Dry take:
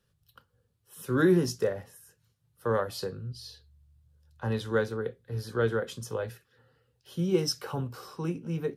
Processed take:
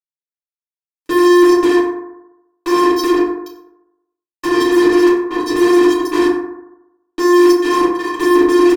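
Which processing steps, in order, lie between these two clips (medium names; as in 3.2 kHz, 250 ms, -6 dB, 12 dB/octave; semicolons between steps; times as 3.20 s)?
low-pass that closes with the level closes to 2.8 kHz, closed at -24 dBFS; 5.60–6.12 s: hum notches 50/100/150/200/250/300/350/400 Hz; in parallel at 0 dB: compressor with a negative ratio -31 dBFS, ratio -0.5; on the sum: vocoder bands 16, square 353 Hz; fuzz box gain 45 dB, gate -42 dBFS; on a send: delay 93 ms -18.5 dB; on the sum: FDN reverb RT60 0.9 s, low-frequency decay 0.9×, high-frequency decay 0.35×, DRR -8 dB; trim -5 dB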